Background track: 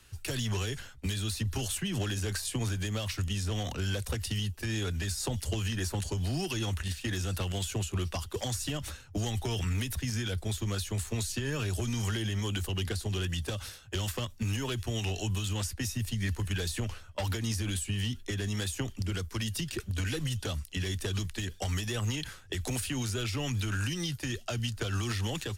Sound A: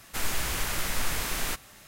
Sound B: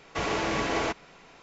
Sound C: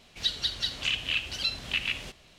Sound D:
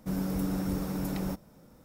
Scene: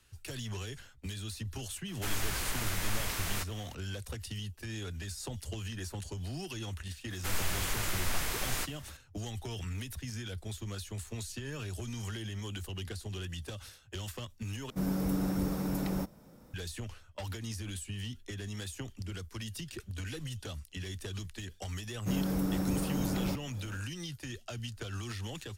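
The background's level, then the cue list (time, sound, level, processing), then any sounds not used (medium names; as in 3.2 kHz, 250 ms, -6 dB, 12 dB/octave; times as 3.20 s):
background track -7.5 dB
1.88 s: add A -5 dB
7.10 s: add A -4 dB
14.70 s: replace with D -0.5 dB
22.00 s: add D -0.5 dB, fades 0.10 s + three bands compressed up and down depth 40%
not used: B, C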